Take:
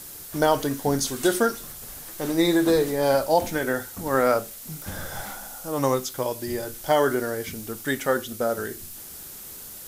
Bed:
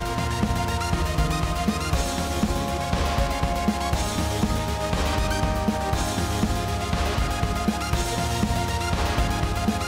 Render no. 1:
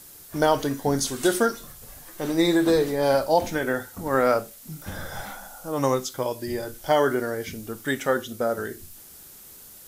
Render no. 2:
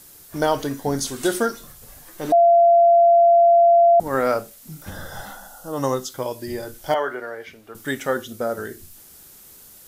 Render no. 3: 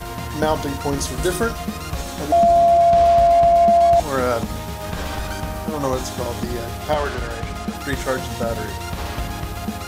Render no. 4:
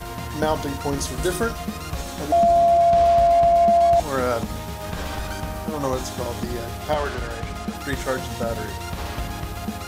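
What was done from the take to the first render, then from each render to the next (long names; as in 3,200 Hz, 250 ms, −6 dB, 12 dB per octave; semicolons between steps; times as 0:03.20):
noise reduction from a noise print 6 dB
0:02.32–0:04.00: beep over 685 Hz −10 dBFS; 0:04.90–0:06.10: Butterworth band-reject 2,300 Hz, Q 4.4; 0:06.94–0:07.75: three-way crossover with the lows and the highs turned down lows −16 dB, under 460 Hz, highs −16 dB, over 3,300 Hz
mix in bed −3.5 dB
level −2.5 dB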